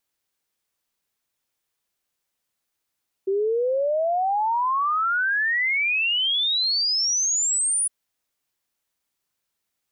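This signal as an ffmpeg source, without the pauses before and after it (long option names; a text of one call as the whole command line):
ffmpeg -f lavfi -i "aevalsrc='0.106*clip(min(t,4.61-t)/0.01,0,1)*sin(2*PI*380*4.61/log(9900/380)*(exp(log(9900/380)*t/4.61)-1))':duration=4.61:sample_rate=44100" out.wav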